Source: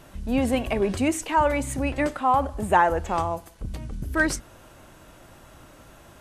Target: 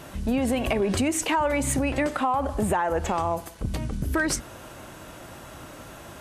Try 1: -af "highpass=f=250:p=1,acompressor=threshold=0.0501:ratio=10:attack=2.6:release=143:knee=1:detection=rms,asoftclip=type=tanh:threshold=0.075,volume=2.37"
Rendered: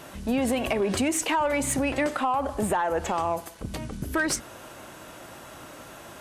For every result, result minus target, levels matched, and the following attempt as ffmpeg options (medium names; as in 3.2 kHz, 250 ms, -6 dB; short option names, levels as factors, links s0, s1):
saturation: distortion +13 dB; 125 Hz band -4.5 dB
-af "highpass=f=250:p=1,acompressor=threshold=0.0501:ratio=10:attack=2.6:release=143:knee=1:detection=rms,asoftclip=type=tanh:threshold=0.168,volume=2.37"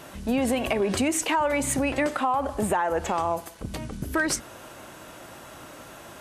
125 Hz band -5.0 dB
-af "highpass=f=75:p=1,acompressor=threshold=0.0501:ratio=10:attack=2.6:release=143:knee=1:detection=rms,asoftclip=type=tanh:threshold=0.168,volume=2.37"